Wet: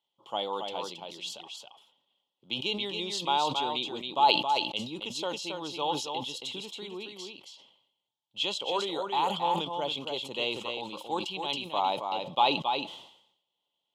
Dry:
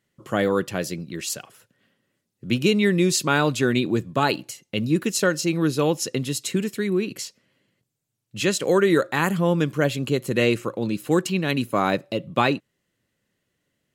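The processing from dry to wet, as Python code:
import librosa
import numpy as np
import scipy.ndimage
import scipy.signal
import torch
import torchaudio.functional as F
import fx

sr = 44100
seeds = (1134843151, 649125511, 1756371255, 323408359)

y = fx.double_bandpass(x, sr, hz=1700.0, octaves=1.9)
y = y + 10.0 ** (-5.5 / 20.0) * np.pad(y, (int(273 * sr / 1000.0), 0))[:len(y)]
y = fx.sustainer(y, sr, db_per_s=78.0)
y = y * librosa.db_to_amplitude(4.5)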